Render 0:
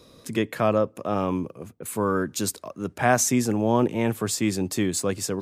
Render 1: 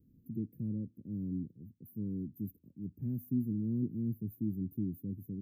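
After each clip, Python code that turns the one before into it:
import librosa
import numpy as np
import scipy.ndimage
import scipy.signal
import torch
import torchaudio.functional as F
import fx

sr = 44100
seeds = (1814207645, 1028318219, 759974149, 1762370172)

y = scipy.signal.sosfilt(scipy.signal.cheby2(4, 50, [650.0, 8600.0], 'bandstop', fs=sr, output='sos'), x)
y = F.gain(torch.from_numpy(y), -7.5).numpy()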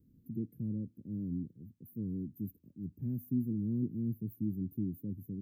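y = fx.record_warp(x, sr, rpm=78.0, depth_cents=100.0)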